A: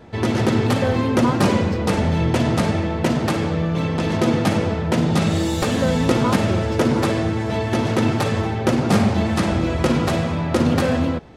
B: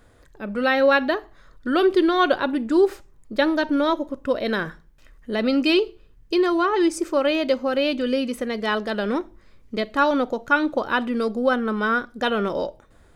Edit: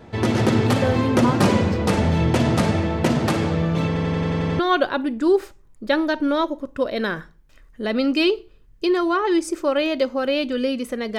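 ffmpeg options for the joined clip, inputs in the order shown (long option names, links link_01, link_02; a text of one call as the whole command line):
ffmpeg -i cue0.wav -i cue1.wav -filter_complex "[0:a]apad=whole_dur=11.18,atrim=end=11.18,asplit=8[link_01][link_02][link_03][link_04][link_05][link_06][link_07][link_08];[link_01]atrim=end=3.962[link_09];[link_02]atrim=start=3.868:end=3.962[link_10];[link_03]atrim=start=3.868:end=3.962[link_11];[link_04]atrim=start=3.868:end=3.962[link_12];[link_05]atrim=start=3.868:end=3.962[link_13];[link_06]atrim=start=3.868:end=3.962[link_14];[link_07]atrim=start=3.868:end=3.962[link_15];[link_08]atrim=start=3.868:end=3.962[link_16];[1:a]atrim=start=2.078:end=8.67[link_17];[link_09][link_10]acrossfade=duration=0.004:curve1=hsin:curve2=hsin[link_18];[link_18][link_11]acrossfade=duration=0.004:curve1=hsin:curve2=hsin[link_19];[link_19][link_12]acrossfade=duration=0.004:curve1=hsin:curve2=hsin[link_20];[link_20][link_13]acrossfade=duration=0.004:curve1=hsin:curve2=hsin[link_21];[link_21][link_14]acrossfade=duration=0.004:curve1=hsin:curve2=hsin[link_22];[link_22][link_15]acrossfade=duration=0.004:curve1=hsin:curve2=hsin[link_23];[link_23][link_16]acrossfade=duration=0.004:curve1=hsin:curve2=hsin[link_24];[link_24][link_17]acrossfade=duration=0.004:curve1=hsin:curve2=hsin" out.wav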